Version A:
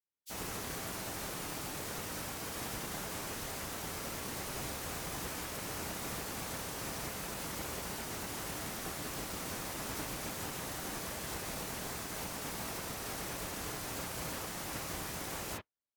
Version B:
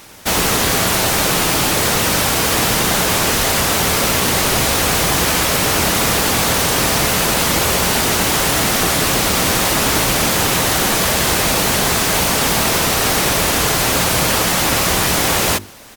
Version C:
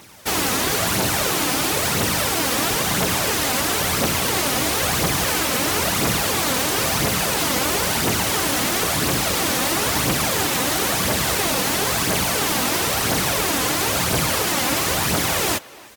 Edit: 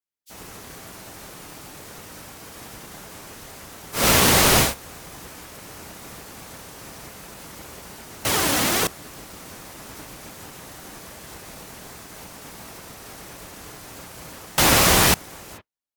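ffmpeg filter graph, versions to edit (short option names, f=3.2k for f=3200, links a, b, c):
-filter_complex "[1:a]asplit=2[a][b];[0:a]asplit=4[c][d][e][f];[c]atrim=end=4.08[g];[a]atrim=start=3.92:end=4.75[h];[d]atrim=start=4.59:end=8.252[i];[2:a]atrim=start=8.248:end=8.872[j];[e]atrim=start=8.868:end=14.582[k];[b]atrim=start=14.578:end=15.142[l];[f]atrim=start=15.138[m];[g][h]acrossfade=d=0.16:c1=tri:c2=tri[n];[n][i]acrossfade=d=0.16:c1=tri:c2=tri[o];[o][j]acrossfade=d=0.004:c1=hsin:c2=hsin[p];[p][k]acrossfade=d=0.004:c1=hsin:c2=hsin[q];[q][l]acrossfade=d=0.004:c1=hsin:c2=hsin[r];[r][m]acrossfade=d=0.004:c1=hsin:c2=hsin"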